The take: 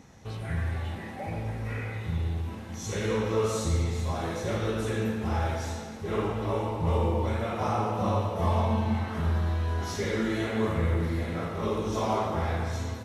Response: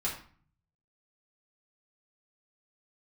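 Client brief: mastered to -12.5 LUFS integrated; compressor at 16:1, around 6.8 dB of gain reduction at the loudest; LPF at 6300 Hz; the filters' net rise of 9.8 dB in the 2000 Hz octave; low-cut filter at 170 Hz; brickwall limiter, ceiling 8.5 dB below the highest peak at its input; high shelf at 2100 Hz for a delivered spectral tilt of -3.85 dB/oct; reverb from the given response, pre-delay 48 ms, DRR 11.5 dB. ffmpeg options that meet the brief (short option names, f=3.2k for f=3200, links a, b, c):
-filter_complex "[0:a]highpass=170,lowpass=6.3k,equalizer=f=2k:t=o:g=7,highshelf=f=2.1k:g=9,acompressor=threshold=-28dB:ratio=16,alimiter=level_in=4dB:limit=-24dB:level=0:latency=1,volume=-4dB,asplit=2[a][b];[1:a]atrim=start_sample=2205,adelay=48[c];[b][c]afir=irnorm=-1:irlink=0,volume=-16.5dB[d];[a][d]amix=inputs=2:normalize=0,volume=23.5dB"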